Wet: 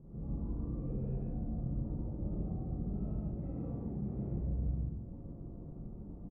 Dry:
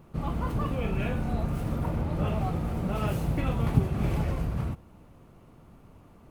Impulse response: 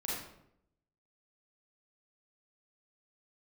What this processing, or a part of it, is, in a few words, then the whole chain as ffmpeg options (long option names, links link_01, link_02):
television next door: -filter_complex "[0:a]asettb=1/sr,asplit=3[link_01][link_02][link_03];[link_01]atrim=end=3.294[link_04];[link_02]atrim=start=3.29:end=4.27,asetpts=PTS-STARTPTS,afade=type=in:duration=0.004:curve=qsin,afade=type=out:start_time=0.976:duration=0.004:curve=qsin,highpass=frequency=210:poles=1[link_05];[link_03]atrim=start=4.266[link_06];[link_04][link_05]acrossfade=duration=0.004:curve1=hsin:curve2=qsin[link_07];[link_07][link_06]acrossfade=duration=0.004:curve1=qsin:curve2=hsin,acompressor=threshold=-44dB:ratio=5,lowpass=390[link_08];[1:a]atrim=start_sample=2205[link_09];[link_08][link_09]afir=irnorm=-1:irlink=0,equalizer=frequency=1000:width_type=o:width=0.45:gain=-2.5,aecho=1:1:96.21|142.9:0.316|0.891,volume=1dB"